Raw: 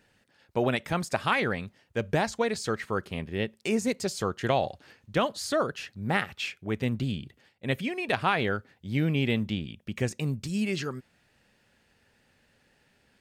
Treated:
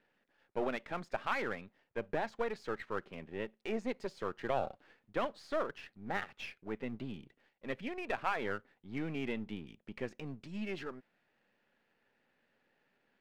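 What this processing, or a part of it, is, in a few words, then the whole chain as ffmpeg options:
crystal radio: -af "highpass=230,lowpass=2500,aeval=exprs='if(lt(val(0),0),0.447*val(0),val(0))':c=same,volume=0.562"

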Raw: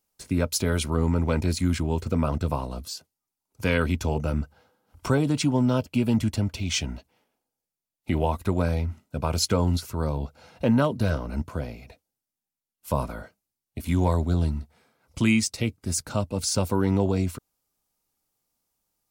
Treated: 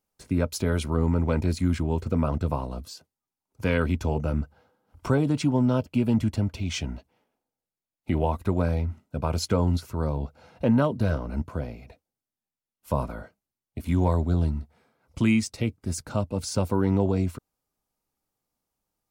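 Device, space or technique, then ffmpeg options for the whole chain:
behind a face mask: -af "highshelf=f=2400:g=-8"

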